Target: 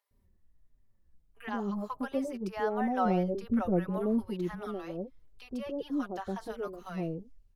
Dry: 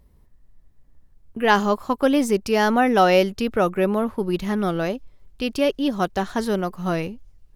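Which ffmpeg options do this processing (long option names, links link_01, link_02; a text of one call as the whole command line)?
ffmpeg -i in.wav -filter_complex "[0:a]asettb=1/sr,asplit=3[link_01][link_02][link_03];[link_01]atrim=end=2.944[link_04];[link_02]atrim=start=2.94:end=4.18,asetpts=PTS-STARTPTS,afade=type=in:duration=0.004:curve=qsin,afade=type=out:start_time=1.236:duration=0.004:curve=qsin,lowshelf=frequency=490:gain=8[link_05];[link_03]atrim=start=4.176[link_06];[link_04][link_05]acrossfade=duration=0.004:curve1=hsin:curve2=qsin[link_07];[link_07][link_06]acrossfade=duration=0.004:curve1=qsin:curve2=hsin,acrossover=split=1500[link_08][link_09];[link_09]acompressor=threshold=-41dB:ratio=5[link_10];[link_08][link_10]amix=inputs=2:normalize=0,acrossover=split=710[link_11][link_12];[link_11]adelay=110[link_13];[link_13][link_12]amix=inputs=2:normalize=0,asplit=2[link_14][link_15];[link_15]adelay=4.4,afreqshift=-1.5[link_16];[link_14][link_16]amix=inputs=2:normalize=1,volume=-8.5dB" out.wav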